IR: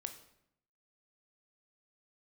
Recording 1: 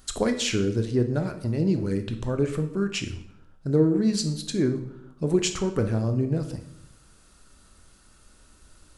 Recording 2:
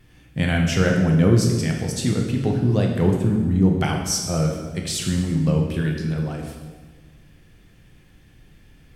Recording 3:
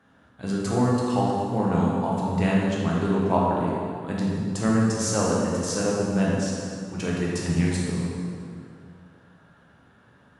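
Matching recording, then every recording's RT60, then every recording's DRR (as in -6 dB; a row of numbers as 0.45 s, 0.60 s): 1; 0.75 s, 1.4 s, 2.4 s; 7.0 dB, 0.5 dB, -5.0 dB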